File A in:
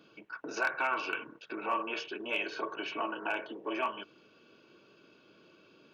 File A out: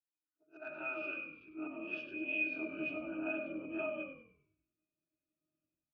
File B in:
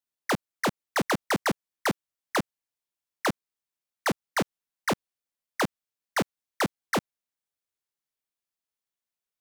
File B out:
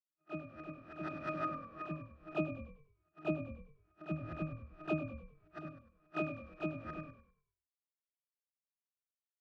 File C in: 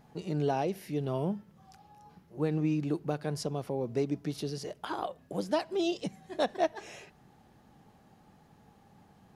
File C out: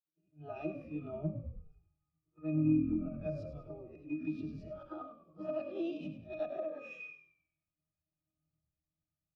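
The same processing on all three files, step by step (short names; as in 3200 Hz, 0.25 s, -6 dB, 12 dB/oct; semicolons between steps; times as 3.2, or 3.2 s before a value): spectral swells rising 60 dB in 0.40 s; high shelf 2200 Hz -9.5 dB; auto swell 0.117 s; spectral noise reduction 7 dB; weighting filter D; AGC gain up to 13 dB; octave resonator D#, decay 0.33 s; frequency-shifting echo 0.1 s, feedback 51%, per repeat -42 Hz, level -9 dB; compressor 3:1, threshold -38 dBFS; three-band expander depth 100%; gain +1 dB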